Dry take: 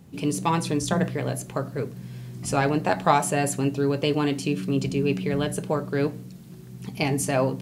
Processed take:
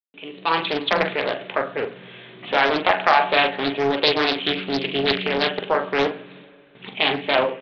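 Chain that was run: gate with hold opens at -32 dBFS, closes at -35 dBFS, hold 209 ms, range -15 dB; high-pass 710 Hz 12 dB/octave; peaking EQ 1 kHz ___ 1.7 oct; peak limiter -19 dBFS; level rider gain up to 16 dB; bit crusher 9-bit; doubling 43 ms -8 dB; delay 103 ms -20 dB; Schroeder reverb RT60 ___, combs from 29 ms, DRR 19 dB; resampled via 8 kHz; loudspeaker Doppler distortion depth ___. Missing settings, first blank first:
-7.5 dB, 2.6 s, 0.48 ms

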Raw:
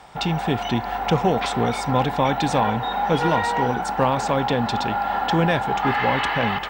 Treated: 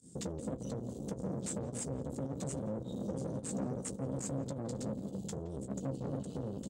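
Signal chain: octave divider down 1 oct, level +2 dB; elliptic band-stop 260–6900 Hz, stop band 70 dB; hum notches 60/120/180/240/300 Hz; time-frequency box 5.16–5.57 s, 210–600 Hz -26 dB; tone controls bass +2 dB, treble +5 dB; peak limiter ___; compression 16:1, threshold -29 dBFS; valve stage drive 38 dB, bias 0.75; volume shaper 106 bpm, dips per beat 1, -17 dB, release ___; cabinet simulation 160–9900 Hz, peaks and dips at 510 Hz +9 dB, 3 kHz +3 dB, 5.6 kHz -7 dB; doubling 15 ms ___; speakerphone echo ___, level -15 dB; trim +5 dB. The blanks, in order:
-19 dBFS, 73 ms, -9 dB, 170 ms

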